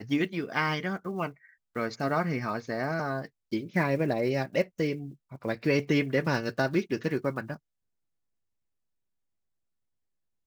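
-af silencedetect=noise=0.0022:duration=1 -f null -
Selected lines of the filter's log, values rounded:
silence_start: 7.57
silence_end: 10.47 | silence_duration: 2.90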